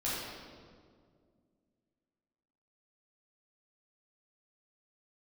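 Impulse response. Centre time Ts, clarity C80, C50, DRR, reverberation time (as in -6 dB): 0.117 s, 0.0 dB, -2.5 dB, -9.5 dB, 2.0 s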